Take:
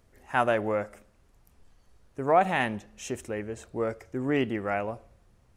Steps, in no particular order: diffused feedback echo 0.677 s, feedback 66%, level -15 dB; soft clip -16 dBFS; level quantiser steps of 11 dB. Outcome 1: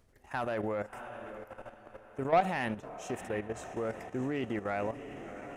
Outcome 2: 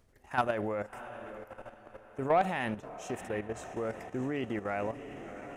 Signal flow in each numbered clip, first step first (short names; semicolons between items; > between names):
diffused feedback echo > soft clip > level quantiser; diffused feedback echo > level quantiser > soft clip